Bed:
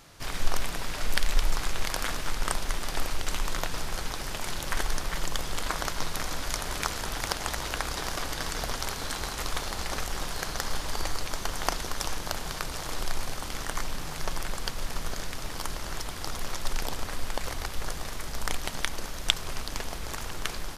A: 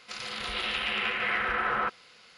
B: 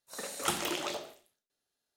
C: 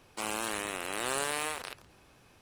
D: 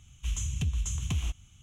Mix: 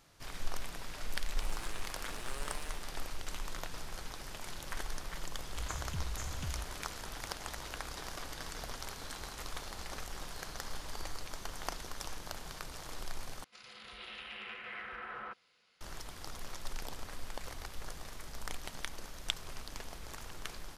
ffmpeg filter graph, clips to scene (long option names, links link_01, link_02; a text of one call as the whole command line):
ffmpeg -i bed.wav -i cue0.wav -i cue1.wav -i cue2.wav -i cue3.wav -filter_complex "[0:a]volume=-11dB,asplit=2[link_01][link_02];[link_01]atrim=end=13.444[link_03];[1:a]atrim=end=2.37,asetpts=PTS-STARTPTS,volume=-16dB[link_04];[link_02]atrim=start=15.806[link_05];[3:a]atrim=end=2.41,asetpts=PTS-STARTPTS,volume=-15dB,afade=type=in:duration=0.004:curve=hsin,afade=type=out:start_time=2.406:duration=0.004:curve=hsin,adelay=1200[link_06];[4:a]atrim=end=1.62,asetpts=PTS-STARTPTS,volume=-10.5dB,afade=type=in:duration=0.004:curve=hsin,afade=type=out:start_time=1.616:duration=0.004:curve=hsin,adelay=5320[link_07];[link_03][link_04]acrossfade=duration=0.004:curve1=hsin:curve2=hsin[link_08];[link_08][link_05]acrossfade=duration=0.004:curve1=hsin:curve2=hsin[link_09];[link_09][link_06][link_07]amix=inputs=3:normalize=0" out.wav